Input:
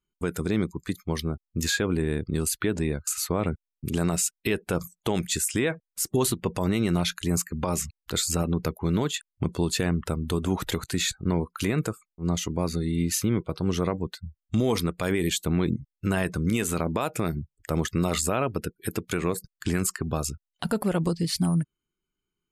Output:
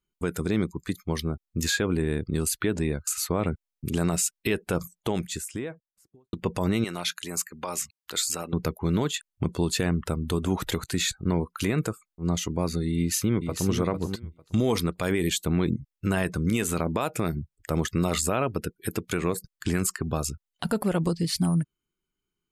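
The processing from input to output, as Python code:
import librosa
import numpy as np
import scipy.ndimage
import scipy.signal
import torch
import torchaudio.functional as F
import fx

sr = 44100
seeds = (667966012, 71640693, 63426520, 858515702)

y = fx.studio_fade_out(x, sr, start_s=4.74, length_s=1.59)
y = fx.highpass(y, sr, hz=850.0, slope=6, at=(6.84, 8.53))
y = fx.echo_throw(y, sr, start_s=12.96, length_s=0.74, ms=450, feedback_pct=15, wet_db=-7.0)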